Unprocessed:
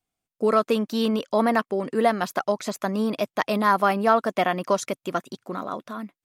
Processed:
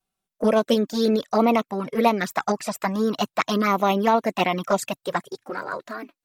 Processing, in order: formant shift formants +3 st; envelope flanger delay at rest 5.2 ms, full sweep at -17 dBFS; gain +4.5 dB

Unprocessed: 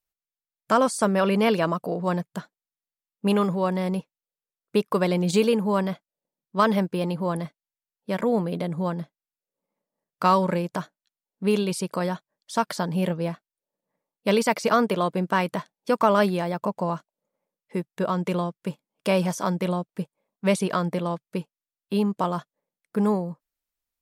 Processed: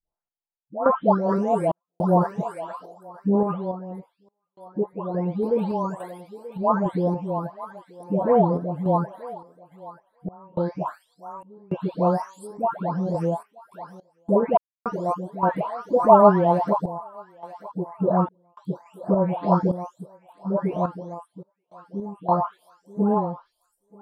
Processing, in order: spectral delay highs late, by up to 0.665 s; EQ curve 460 Hz 0 dB, 820 Hz +8 dB, 2400 Hz -19 dB; thinning echo 0.931 s, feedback 25%, high-pass 1200 Hz, level -10.5 dB; random-step tremolo, depth 100%; gain +6.5 dB

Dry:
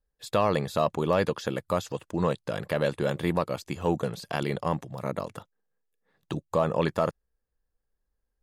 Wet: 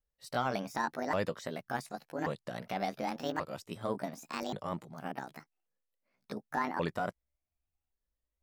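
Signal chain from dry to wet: repeated pitch sweeps +9.5 st, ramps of 1.132 s; gain -7.5 dB

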